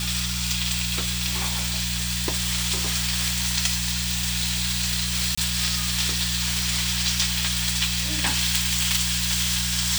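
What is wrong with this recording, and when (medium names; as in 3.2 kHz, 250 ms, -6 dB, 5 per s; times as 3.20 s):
hum 60 Hz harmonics 3 -30 dBFS
5.35–5.38 s: dropout 25 ms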